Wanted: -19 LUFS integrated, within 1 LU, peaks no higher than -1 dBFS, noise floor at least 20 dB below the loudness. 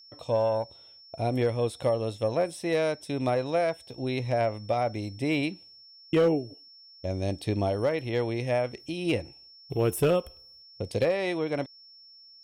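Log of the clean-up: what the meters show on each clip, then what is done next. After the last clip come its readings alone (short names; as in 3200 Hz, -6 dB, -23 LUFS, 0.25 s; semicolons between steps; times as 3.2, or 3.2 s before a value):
clipped 0.3%; flat tops at -17.0 dBFS; steady tone 5400 Hz; tone level -50 dBFS; loudness -28.5 LUFS; peak -17.0 dBFS; loudness target -19.0 LUFS
-> clip repair -17 dBFS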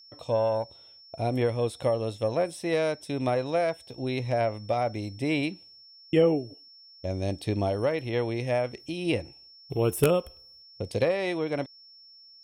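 clipped 0.0%; steady tone 5400 Hz; tone level -50 dBFS
-> notch 5400 Hz, Q 30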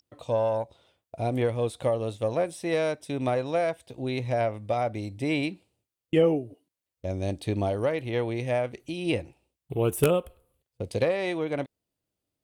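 steady tone none; loudness -28.5 LUFS; peak -8.0 dBFS; loudness target -19.0 LUFS
-> gain +9.5 dB; limiter -1 dBFS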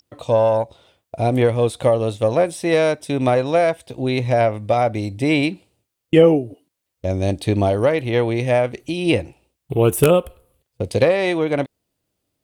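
loudness -19.0 LUFS; peak -1.0 dBFS; noise floor -79 dBFS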